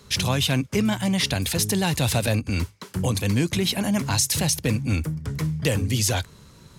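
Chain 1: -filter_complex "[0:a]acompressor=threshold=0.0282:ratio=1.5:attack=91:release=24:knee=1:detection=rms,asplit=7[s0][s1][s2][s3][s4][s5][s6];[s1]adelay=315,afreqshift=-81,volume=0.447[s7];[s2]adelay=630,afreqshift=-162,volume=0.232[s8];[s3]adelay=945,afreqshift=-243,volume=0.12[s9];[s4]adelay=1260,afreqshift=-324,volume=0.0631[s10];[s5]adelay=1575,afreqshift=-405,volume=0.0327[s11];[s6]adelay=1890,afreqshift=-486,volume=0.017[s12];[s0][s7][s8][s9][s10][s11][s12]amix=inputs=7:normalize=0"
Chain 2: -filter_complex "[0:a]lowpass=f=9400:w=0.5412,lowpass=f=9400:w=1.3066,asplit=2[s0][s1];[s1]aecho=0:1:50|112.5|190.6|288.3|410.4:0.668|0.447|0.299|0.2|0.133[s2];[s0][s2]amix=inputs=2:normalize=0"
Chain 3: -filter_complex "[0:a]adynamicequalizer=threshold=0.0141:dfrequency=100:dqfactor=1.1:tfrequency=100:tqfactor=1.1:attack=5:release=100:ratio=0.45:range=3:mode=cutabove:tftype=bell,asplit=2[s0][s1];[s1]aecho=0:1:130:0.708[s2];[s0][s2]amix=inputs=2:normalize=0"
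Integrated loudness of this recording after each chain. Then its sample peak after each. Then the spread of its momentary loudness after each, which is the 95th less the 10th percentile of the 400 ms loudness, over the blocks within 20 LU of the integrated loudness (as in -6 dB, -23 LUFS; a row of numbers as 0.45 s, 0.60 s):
-24.5 LUFS, -21.5 LUFS, -22.5 LUFS; -10.0 dBFS, -7.5 dBFS, -8.0 dBFS; 5 LU, 6 LU, 8 LU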